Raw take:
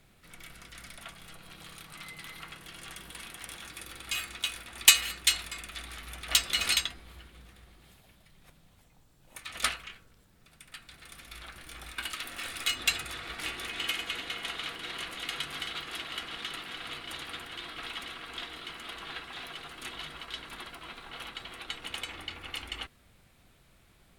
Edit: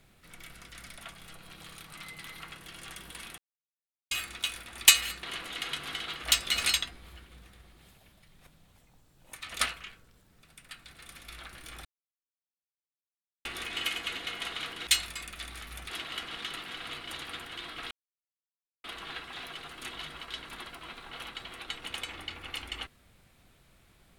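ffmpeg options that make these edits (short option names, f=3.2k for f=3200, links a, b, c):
-filter_complex "[0:a]asplit=11[a][b][c][d][e][f][g][h][i][j][k];[a]atrim=end=3.38,asetpts=PTS-STARTPTS,afade=t=out:st=3.376:d=0.004:c=hsin[l];[b]atrim=start=3.38:end=4.11,asetpts=PTS-STARTPTS,volume=0[m];[c]atrim=start=4.11:end=5.232,asetpts=PTS-STARTPTS,afade=t=in:d=0.004:c=hsin[n];[d]atrim=start=14.898:end=15.902[o];[e]atrim=start=6.258:end=11.88,asetpts=PTS-STARTPTS,afade=t=out:st=5.618:d=0.004:c=hsin[p];[f]atrim=start=11.88:end=13.48,asetpts=PTS-STARTPTS,volume=0[q];[g]atrim=start=13.48:end=14.902,asetpts=PTS-STARTPTS,afade=t=in:d=0.004:c=hsin[r];[h]atrim=start=5.228:end=6.262[s];[i]atrim=start=15.898:end=17.91,asetpts=PTS-STARTPTS,afade=t=out:st=2.008:d=0.004:c=hsin[t];[j]atrim=start=17.91:end=18.84,asetpts=PTS-STARTPTS,volume=0[u];[k]atrim=start=18.84,asetpts=PTS-STARTPTS,afade=t=in:d=0.004:c=hsin[v];[l][m][n]concat=n=3:v=0:a=1[w];[w][o]acrossfade=d=0.004:c1=hsin:c2=hsin[x];[p][q][r]concat=n=3:v=0:a=1[y];[x][y]acrossfade=d=0.004:c1=hsin:c2=hsin[z];[z][s]acrossfade=d=0.004:c1=hsin:c2=hsin[aa];[t][u][v]concat=n=3:v=0:a=1[ab];[aa][ab]acrossfade=d=0.004:c1=hsin:c2=hsin"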